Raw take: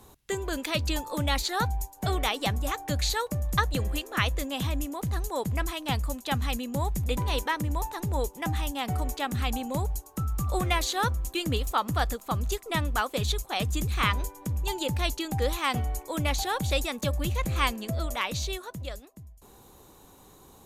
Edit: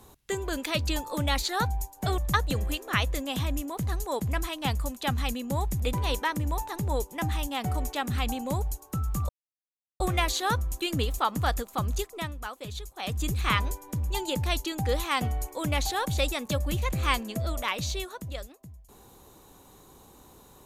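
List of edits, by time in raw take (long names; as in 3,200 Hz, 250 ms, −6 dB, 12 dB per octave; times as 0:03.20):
0:02.18–0:03.42: remove
0:10.53: splice in silence 0.71 s
0:12.50–0:13.80: duck −10 dB, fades 0.36 s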